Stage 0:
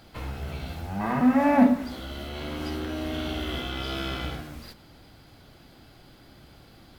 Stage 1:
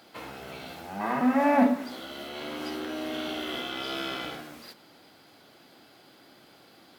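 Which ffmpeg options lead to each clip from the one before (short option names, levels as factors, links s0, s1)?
-af "highpass=280"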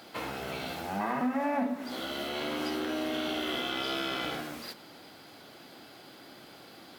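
-af "acompressor=threshold=0.02:ratio=4,volume=1.68"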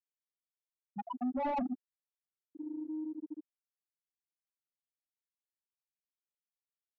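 -filter_complex "[0:a]afftfilt=real='re*gte(hypot(re,im),0.2)':imag='im*gte(hypot(re,im),0.2)':win_size=1024:overlap=0.75,asplit=2[s0][s1];[s1]highpass=f=720:p=1,volume=7.94,asoftclip=type=tanh:threshold=0.0794[s2];[s0][s2]amix=inputs=2:normalize=0,lowpass=f=2600:p=1,volume=0.501,volume=0.631"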